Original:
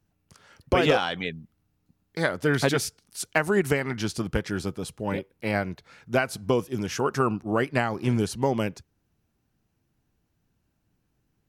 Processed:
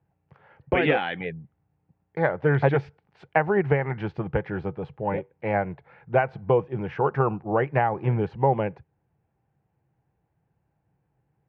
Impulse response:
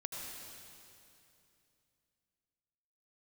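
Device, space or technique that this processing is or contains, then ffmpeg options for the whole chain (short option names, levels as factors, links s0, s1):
bass cabinet: -filter_complex "[0:a]asettb=1/sr,asplit=3[s0][s1][s2];[s0]atrim=end=0.734[s3];[s1]atrim=start=0.73:end=1.21,asetpts=PTS-STARTPTS,afade=t=in:d=0.004:c=qsin,afade=t=out:st=0.476:d=0.004:c=qsin,equalizer=f=125:t=o:w=1:g=-10,equalizer=f=250:t=o:w=1:g=10,equalizer=f=500:t=o:w=1:g=-6,equalizer=f=1000:t=o:w=1:g=-9,equalizer=f=2000:t=o:w=1:g=7,equalizer=f=4000:t=o:w=1:g=10,equalizer=f=8000:t=o:w=1:g=-11[s4];[s2]atrim=start=1.206[s5];[s3][s4]acrossfade=d=0.004:c1=hsin:c2=qsin[s6];[s6][s5]acrossfade=d=0.004:c1=qsin:c2=hsin,highpass=62,equalizer=f=140:t=q:w=4:g=7,equalizer=f=250:t=q:w=4:g=-10,equalizer=f=500:t=q:w=4:g=5,equalizer=f=820:t=q:w=4:g=9,equalizer=f=1300:t=q:w=4:g=-4,lowpass=f=2200:w=0.5412,lowpass=f=2200:w=1.3066"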